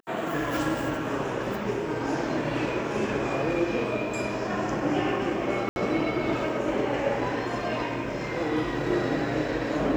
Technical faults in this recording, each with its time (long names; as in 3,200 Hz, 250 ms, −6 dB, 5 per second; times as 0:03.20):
0:05.69–0:05.76: drop-out 71 ms